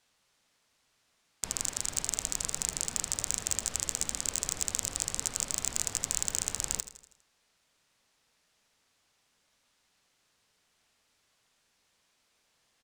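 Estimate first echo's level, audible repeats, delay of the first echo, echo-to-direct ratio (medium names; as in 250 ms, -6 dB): -14.0 dB, 4, 81 ms, -12.5 dB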